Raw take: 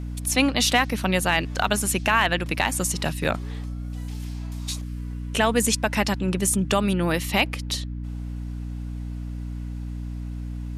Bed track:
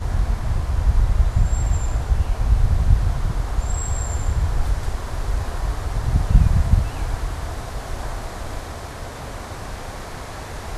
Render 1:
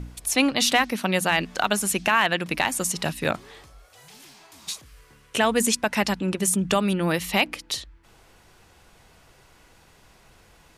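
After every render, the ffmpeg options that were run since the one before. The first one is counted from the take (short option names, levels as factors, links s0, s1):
-af "bandreject=f=60:t=h:w=4,bandreject=f=120:t=h:w=4,bandreject=f=180:t=h:w=4,bandreject=f=240:t=h:w=4,bandreject=f=300:t=h:w=4"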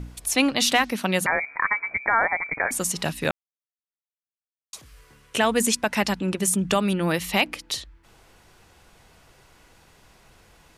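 -filter_complex "[0:a]asettb=1/sr,asplit=3[s0][s1][s2];[s0]atrim=end=1.264[s3];[s1]atrim=start=1.26:end=2.71,asetpts=PTS-STARTPTS,afade=t=in:d=0.004:c=qsin,afade=t=out:st=1.446:d=0.004:c=qsin,lowpass=f=2100:t=q:w=0.5098,lowpass=f=2100:t=q:w=0.6013,lowpass=f=2100:t=q:w=0.9,lowpass=f=2100:t=q:w=2.563,afreqshift=-2500[s4];[s2]atrim=start=2.706[s5];[s3][s4]acrossfade=d=0.004:c1=hsin:c2=qsin[s6];[s6][s5]acrossfade=d=0.004:c1=qsin:c2=hsin,asplit=3[s7][s8][s9];[s7]atrim=end=3.31,asetpts=PTS-STARTPTS,afade=t=out:st=3.306:d=0.004:c=hsin[s10];[s8]atrim=start=3.31:end=4.73,asetpts=PTS-STARTPTS,volume=0[s11];[s9]atrim=start=4.73,asetpts=PTS-STARTPTS,afade=t=in:d=0.004:c=hsin[s12];[s10][s11][s12]concat=n=3:v=0:a=1"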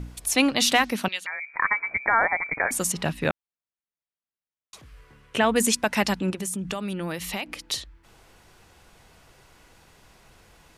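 -filter_complex "[0:a]asettb=1/sr,asplit=3[s0][s1][s2];[s0]atrim=end=1.084[s3];[s1]atrim=start=1.08:end=1.54,asetpts=PTS-STARTPTS,afade=t=in:d=0.004:c=qsin,afade=t=out:st=0.456:d=0.004:c=qsin,bandpass=f=3300:t=q:w=1.9[s4];[s2]atrim=start=1.536[s5];[s3][s4]acrossfade=d=0.004:c1=hsin:c2=qsin[s6];[s6][s5]acrossfade=d=0.004:c1=qsin:c2=hsin,asettb=1/sr,asplit=3[s7][s8][s9];[s7]atrim=end=2.924[s10];[s8]atrim=start=2.92:end=5.56,asetpts=PTS-STARTPTS,afade=t=in:d=0.004:c=qsin,afade=t=out:st=2.636:d=0.004:c=qsin,bass=f=250:g=2,treble=f=4000:g=-10[s11];[s9]atrim=start=5.556[s12];[s10][s11]acrossfade=d=0.004:c1=hsin:c2=qsin[s13];[s13][s12]acrossfade=d=0.004:c1=qsin:c2=hsin,asettb=1/sr,asplit=3[s14][s15][s16];[s14]atrim=end=6.304[s17];[s15]atrim=start=6.3:end=7.7,asetpts=PTS-STARTPTS,afade=t=in:d=0.004:c=qsin,afade=t=out:st=1.396:d=0.004:c=qsin,acompressor=threshold=0.0355:ratio=3:attack=3.2:release=140:knee=1:detection=peak[s18];[s16]atrim=start=7.696[s19];[s17][s18]acrossfade=d=0.004:c1=hsin:c2=qsin[s20];[s20][s19]acrossfade=d=0.004:c1=qsin:c2=hsin"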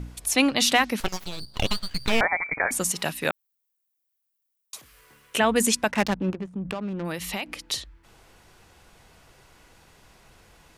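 -filter_complex "[0:a]asettb=1/sr,asplit=3[s0][s1][s2];[s0]atrim=end=1.004[s3];[s1]atrim=start=1:end=2.21,asetpts=PTS-STARTPTS,afade=t=in:d=0.004:c=qsin,afade=t=out:st=1.206:d=0.004:c=qsin,aeval=exprs='abs(val(0))':c=same[s4];[s2]atrim=start=2.206[s5];[s3][s4]acrossfade=d=0.004:c1=hsin:c2=qsin[s6];[s6][s5]acrossfade=d=0.004:c1=qsin:c2=hsin,asplit=3[s7][s8][s9];[s7]afade=t=out:st=2.91:d=0.02[s10];[s8]aemphasis=mode=production:type=bsi,afade=t=in:st=2.91:d=0.02,afade=t=out:st=5.39:d=0.02[s11];[s9]afade=t=in:st=5.39:d=0.02[s12];[s10][s11][s12]amix=inputs=3:normalize=0,asplit=3[s13][s14][s15];[s13]afade=t=out:st=5.9:d=0.02[s16];[s14]adynamicsmooth=sensitivity=2.5:basefreq=510,afade=t=in:st=5.9:d=0.02,afade=t=out:st=7.04:d=0.02[s17];[s15]afade=t=in:st=7.04:d=0.02[s18];[s16][s17][s18]amix=inputs=3:normalize=0"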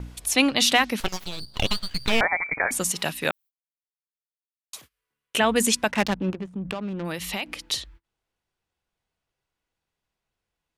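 -af "agate=range=0.0316:threshold=0.00447:ratio=16:detection=peak,equalizer=f=3300:w=1.5:g=3"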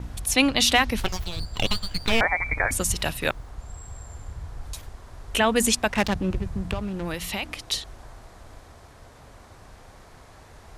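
-filter_complex "[1:a]volume=0.158[s0];[0:a][s0]amix=inputs=2:normalize=0"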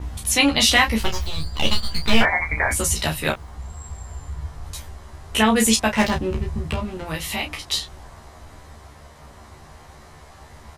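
-filter_complex "[0:a]asplit=2[s0][s1];[s1]adelay=13,volume=0.75[s2];[s0][s2]amix=inputs=2:normalize=0,aecho=1:1:14|32:0.596|0.447"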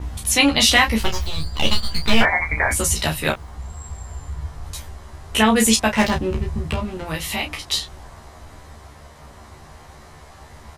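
-af "volume=1.19,alimiter=limit=0.794:level=0:latency=1"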